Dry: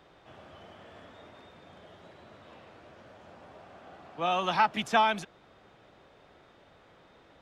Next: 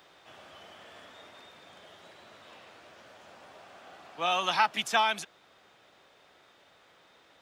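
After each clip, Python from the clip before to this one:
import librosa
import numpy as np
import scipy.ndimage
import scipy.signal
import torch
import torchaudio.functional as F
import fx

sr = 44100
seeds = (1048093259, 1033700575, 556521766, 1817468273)

y = fx.tilt_eq(x, sr, slope=3.0)
y = fx.rider(y, sr, range_db=10, speed_s=0.5)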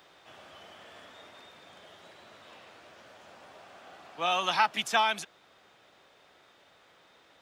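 y = x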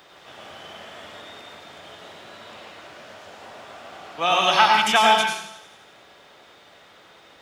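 y = fx.echo_wet_highpass(x, sr, ms=87, feedback_pct=66, hz=1900.0, wet_db=-16.0)
y = fx.rev_plate(y, sr, seeds[0], rt60_s=0.67, hf_ratio=0.95, predelay_ms=80, drr_db=0.0)
y = y * 10.0 ** (7.0 / 20.0)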